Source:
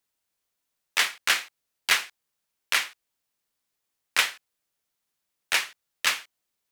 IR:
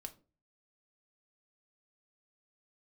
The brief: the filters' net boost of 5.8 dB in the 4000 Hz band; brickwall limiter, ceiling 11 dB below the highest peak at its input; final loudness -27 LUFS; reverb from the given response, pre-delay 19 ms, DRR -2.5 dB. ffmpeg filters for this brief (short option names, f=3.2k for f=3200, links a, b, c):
-filter_complex "[0:a]equalizer=f=4k:t=o:g=7.5,alimiter=limit=-14dB:level=0:latency=1,asplit=2[a][b];[1:a]atrim=start_sample=2205,adelay=19[c];[b][c]afir=irnorm=-1:irlink=0,volume=7dB[d];[a][d]amix=inputs=2:normalize=0,volume=-3dB"